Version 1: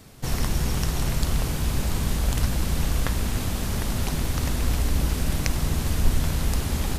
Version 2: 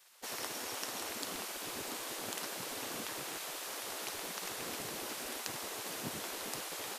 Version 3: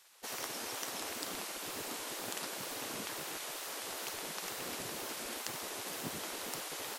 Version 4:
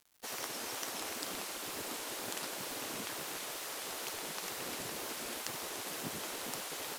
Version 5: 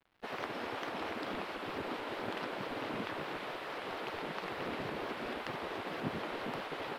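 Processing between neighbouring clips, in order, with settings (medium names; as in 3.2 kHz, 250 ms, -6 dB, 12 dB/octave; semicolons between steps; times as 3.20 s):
de-hum 69.24 Hz, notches 31; spectral gate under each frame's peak -20 dB weak; trim -7 dB
wow and flutter 120 cents
on a send: two-band feedback delay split 520 Hz, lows 426 ms, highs 291 ms, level -13 dB; on the sum: bit crusher 9-bit
distance through air 420 m; vibrato with a chosen wave saw up 4.5 Hz, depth 100 cents; trim +6.5 dB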